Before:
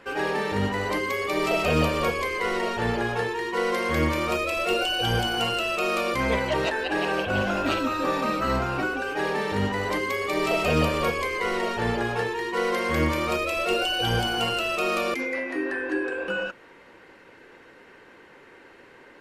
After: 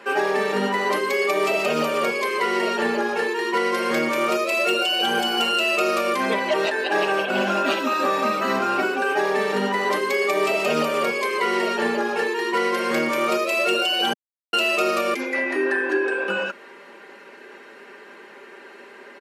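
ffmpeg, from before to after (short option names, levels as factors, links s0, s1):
-filter_complex "[0:a]asplit=3[s0][s1][s2];[s0]atrim=end=14.13,asetpts=PTS-STARTPTS,afade=t=out:st=14.126:d=0.004:c=hsin[s3];[s1]atrim=start=14.13:end=14.53,asetpts=PTS-STARTPTS,volume=0[s4];[s2]atrim=start=14.53,asetpts=PTS-STARTPTS,afade=t=in:d=0.004:c=hsin[s5];[s3][s4][s5]concat=n=3:v=0:a=1,highpass=f=230:w=0.5412,highpass=f=230:w=1.3066,aecho=1:1:5:0.64,alimiter=limit=0.141:level=0:latency=1:release=402,volume=1.88"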